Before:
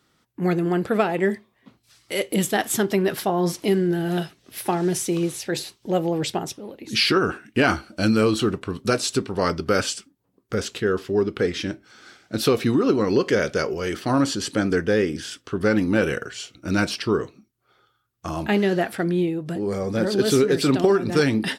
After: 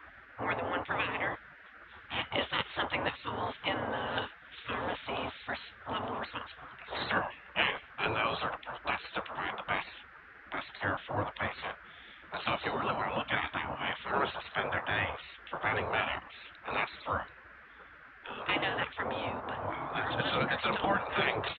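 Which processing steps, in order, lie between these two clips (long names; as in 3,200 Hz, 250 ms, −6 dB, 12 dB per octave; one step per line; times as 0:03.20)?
downsampling to 8,000 Hz
noise in a band 79–1,100 Hz −36 dBFS
gate on every frequency bin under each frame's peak −15 dB weak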